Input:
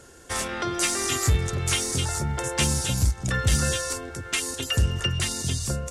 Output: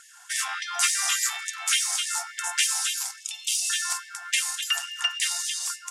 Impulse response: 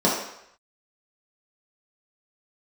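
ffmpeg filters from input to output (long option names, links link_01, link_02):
-filter_complex "[0:a]asettb=1/sr,asplit=3[link_01][link_02][link_03];[link_01]atrim=end=3.204[link_04];[link_02]atrim=start=3.2:end=3.7,asetpts=PTS-STARTPTS,afade=type=in:duration=0.004:curve=qsin,afade=type=out:start_time=0.496:duration=0.004:curve=qsin,asuperstop=centerf=1200:order=12:qfactor=0.65[link_05];[link_03]atrim=start=3.696[link_06];[link_04][link_05]acrossfade=duration=0.004:curve1=hsin:curve2=qsin[link_07];[link_07][link_06]acrossfade=duration=0.004:curve1=qsin:curve2=hsin,asplit=2[link_08][link_09];[1:a]atrim=start_sample=2205,asetrate=40131,aresample=44100[link_10];[link_09][link_10]afir=irnorm=-1:irlink=0,volume=-27dB[link_11];[link_08][link_11]amix=inputs=2:normalize=0,afftfilt=real='re*gte(b*sr/1024,650*pow(1700/650,0.5+0.5*sin(2*PI*3.5*pts/sr)))':imag='im*gte(b*sr/1024,650*pow(1700/650,0.5+0.5*sin(2*PI*3.5*pts/sr)))':win_size=1024:overlap=0.75,volume=2dB"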